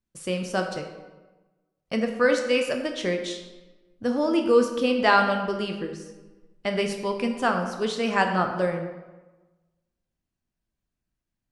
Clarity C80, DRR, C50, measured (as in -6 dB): 8.5 dB, 3.5 dB, 6.5 dB